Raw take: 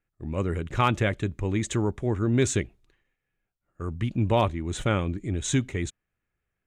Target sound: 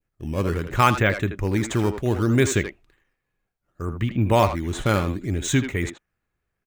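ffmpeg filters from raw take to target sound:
ffmpeg -i in.wav -filter_complex "[0:a]adynamicequalizer=threshold=0.00891:dfrequency=1600:dqfactor=0.99:tfrequency=1600:tqfactor=0.99:attack=5:release=100:ratio=0.375:range=2.5:mode=boostabove:tftype=bell,asplit=2[link_01][link_02];[link_02]acrusher=samples=9:mix=1:aa=0.000001:lfo=1:lforange=14.4:lforate=0.67,volume=-6.5dB[link_03];[link_01][link_03]amix=inputs=2:normalize=0,asplit=2[link_04][link_05];[link_05]adelay=80,highpass=300,lowpass=3400,asoftclip=type=hard:threshold=-16dB,volume=-7dB[link_06];[link_04][link_06]amix=inputs=2:normalize=0" out.wav

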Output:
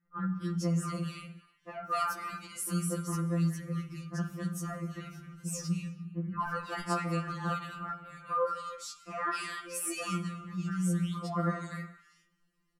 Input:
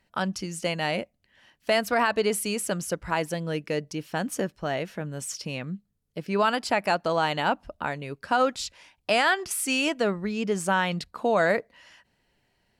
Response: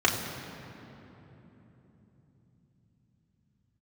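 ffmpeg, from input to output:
-filter_complex "[0:a]tiltshelf=frequency=680:gain=-4,asettb=1/sr,asplit=3[link_01][link_02][link_03];[link_01]atrim=end=5.254[link_04];[link_02]atrim=start=5.25:end=6.84,asetpts=PTS-STARTPTS,afade=type=in:duration=0.004:curve=qsin,afade=type=out:start_time=1.586:duration=0.004:curve=qsin,aeval=exprs='0.376*(cos(1*acos(clip(val(0)/0.376,-1,1)))-cos(1*PI/2))+0.0168*(cos(5*acos(clip(val(0)/0.376,-1,1)))-cos(5*PI/2))':channel_layout=same[link_05];[link_03]atrim=start=6.836[link_06];[link_04][link_05]acrossfade=duration=0.004:curve1=hsin:curve2=qsin[link_07];[link_07][link_06]acrossfade=duration=0.004:curve1=qsin:curve2=hsin,firequalizer=gain_entry='entry(230,0);entry(380,-12);entry(790,-29);entry(1200,2);entry(1700,-17);entry(3800,-23);entry(5700,-14);entry(9500,-12)':delay=0.05:min_phase=1,acrossover=split=160|1900[link_08][link_09][link_10];[link_08]adelay=60[link_11];[link_10]adelay=250[link_12];[link_11][link_09][link_12]amix=inputs=3:normalize=0,asplit=2[link_13][link_14];[1:a]atrim=start_sample=2205,afade=type=out:start_time=0.27:duration=0.01,atrim=end_sample=12348,asetrate=26901,aresample=44100[link_15];[link_14][link_15]afir=irnorm=-1:irlink=0,volume=-20.5dB[link_16];[link_13][link_16]amix=inputs=2:normalize=0,afftfilt=real='re*2.83*eq(mod(b,8),0)':imag='im*2.83*eq(mod(b,8),0)':win_size=2048:overlap=0.75,volume=4dB"

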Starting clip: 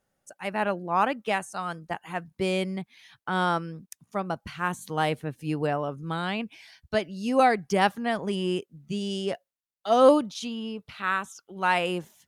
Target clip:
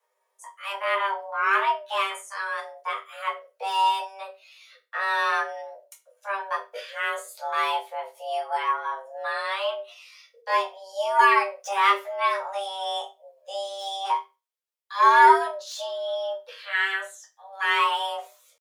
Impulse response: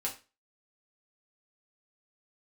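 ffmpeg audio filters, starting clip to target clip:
-filter_complex "[0:a]acrossover=split=370|3000[link_01][link_02][link_03];[link_01]acompressor=threshold=-32dB:ratio=5[link_04];[link_04][link_02][link_03]amix=inputs=3:normalize=0,acrossover=split=2400[link_05][link_06];[link_05]aeval=exprs='0.398*(cos(1*acos(clip(val(0)/0.398,-1,1)))-cos(1*PI/2))+0.158*(cos(2*acos(clip(val(0)/0.398,-1,1)))-cos(2*PI/2))':channel_layout=same[link_07];[link_06]volume=33dB,asoftclip=hard,volume=-33dB[link_08];[link_07][link_08]amix=inputs=2:normalize=0,atempo=0.66,afreqshift=390[link_09];[1:a]atrim=start_sample=2205,asetrate=52920,aresample=44100[link_10];[link_09][link_10]afir=irnorm=-1:irlink=0,volume=1dB"

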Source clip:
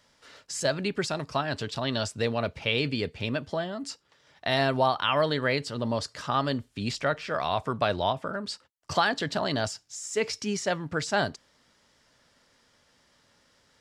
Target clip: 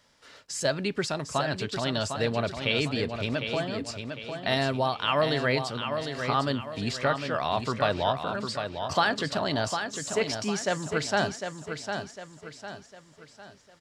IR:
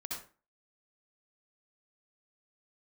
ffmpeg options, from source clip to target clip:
-filter_complex "[0:a]asettb=1/sr,asplit=3[link_01][link_02][link_03];[link_01]atrim=end=4.544[link_04];[link_02]atrim=start=4.54:end=5.08,asetpts=PTS-STARTPTS,afade=type=in:duration=0.004:curve=qsin,afade=type=out:start_time=0.536:duration=0.004:curve=qsin,equalizer=frequency=960:width_type=o:width=2.4:gain=-4[link_05];[link_03]atrim=start=5.076[link_06];[link_04][link_05]acrossfade=duration=0.004:curve1=hsin:curve2=qsin[link_07];[link_07][link_06]acrossfade=duration=0.004:curve1=qsin:curve2=hsin,asettb=1/sr,asplit=3[link_08][link_09][link_10];[link_08]atrim=end=5.774[link_11];[link_09]atrim=start=5.77:end=6.23,asetpts=PTS-STARTPTS,afade=type=in:duration=0.004:curve=qsin,afade=type=out:start_time=0.456:duration=0.004:curve=qsin,acompressor=threshold=-37dB:ratio=6[link_12];[link_10]atrim=start=6.226[link_13];[link_11][link_12]acrossfade=duration=0.004:curve1=hsin:curve2=qsin[link_14];[link_14][link_13]acrossfade=duration=0.004:curve1=qsin:curve2=hsin,aecho=1:1:753|1506|2259|3012|3765:0.447|0.183|0.0751|0.0308|0.0126"

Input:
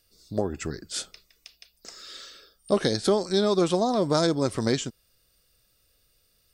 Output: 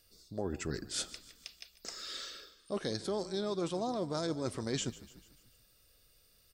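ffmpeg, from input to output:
ffmpeg -i in.wav -filter_complex "[0:a]areverse,acompressor=threshold=-33dB:ratio=6,areverse,asplit=6[link_01][link_02][link_03][link_04][link_05][link_06];[link_02]adelay=147,afreqshift=-31,volume=-17dB[link_07];[link_03]adelay=294,afreqshift=-62,volume=-22.4dB[link_08];[link_04]adelay=441,afreqshift=-93,volume=-27.7dB[link_09];[link_05]adelay=588,afreqshift=-124,volume=-33.1dB[link_10];[link_06]adelay=735,afreqshift=-155,volume=-38.4dB[link_11];[link_01][link_07][link_08][link_09][link_10][link_11]amix=inputs=6:normalize=0" out.wav

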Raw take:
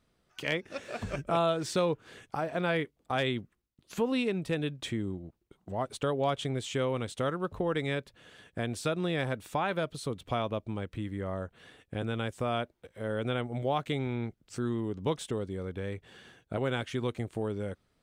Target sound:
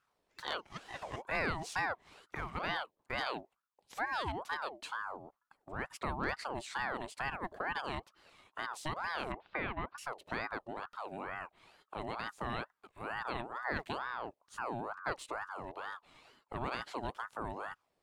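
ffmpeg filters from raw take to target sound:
ffmpeg -i in.wav -filter_complex "[0:a]asettb=1/sr,asplit=3[link_01][link_02][link_03];[link_01]atrim=end=9.324[link_04];[link_02]atrim=start=9.32:end=9.98,asetpts=PTS-STARTPTS,afade=type=in:duration=0.004:curve=qsin,afade=type=out:start_time=0.656:duration=0.004:curve=qsin,lowpass=frequency=2400:width=0.5412,lowpass=frequency=2400:width=1.3066[link_05];[link_03]atrim=start=9.976[link_06];[link_04][link_05]acrossfade=duration=0.004:curve1=hsin:curve2=qsin[link_07];[link_07][link_06]acrossfade=duration=0.004:curve1=qsin:curve2=hsin,aeval=exprs='val(0)*sin(2*PI*920*n/s+920*0.5/2.2*sin(2*PI*2.2*n/s))':channel_layout=same,volume=-4.5dB" out.wav

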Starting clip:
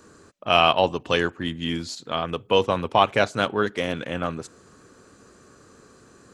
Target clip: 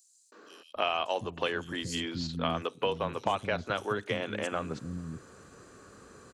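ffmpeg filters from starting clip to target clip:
ffmpeg -i in.wav -filter_complex "[0:a]acompressor=threshold=-26dB:ratio=6,acrossover=split=270|5300[link_01][link_02][link_03];[link_02]adelay=320[link_04];[link_01]adelay=750[link_05];[link_05][link_04][link_03]amix=inputs=3:normalize=0" out.wav

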